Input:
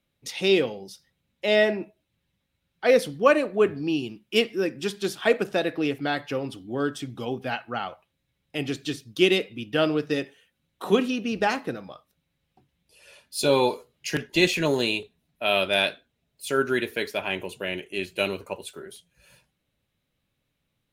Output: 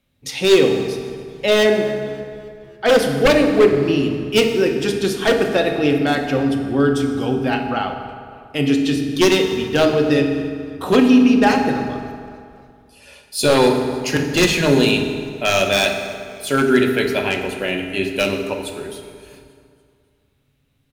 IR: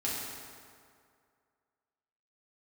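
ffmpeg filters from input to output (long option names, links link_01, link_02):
-filter_complex "[0:a]aeval=exprs='0.188*(abs(mod(val(0)/0.188+3,4)-2)-1)':channel_layout=same,asplit=5[link_01][link_02][link_03][link_04][link_05];[link_02]adelay=281,afreqshift=-73,volume=-23.5dB[link_06];[link_03]adelay=562,afreqshift=-146,volume=-28.9dB[link_07];[link_04]adelay=843,afreqshift=-219,volume=-34.2dB[link_08];[link_05]adelay=1124,afreqshift=-292,volume=-39.6dB[link_09];[link_01][link_06][link_07][link_08][link_09]amix=inputs=5:normalize=0,asplit=2[link_10][link_11];[1:a]atrim=start_sample=2205,lowshelf=frequency=210:gain=10.5[link_12];[link_11][link_12]afir=irnorm=-1:irlink=0,volume=-6.5dB[link_13];[link_10][link_13]amix=inputs=2:normalize=0,volume=3.5dB"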